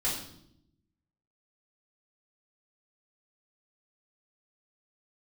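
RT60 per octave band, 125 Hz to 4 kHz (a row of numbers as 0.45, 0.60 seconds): 1.3, 1.2, 0.85, 0.65, 0.60, 0.65 seconds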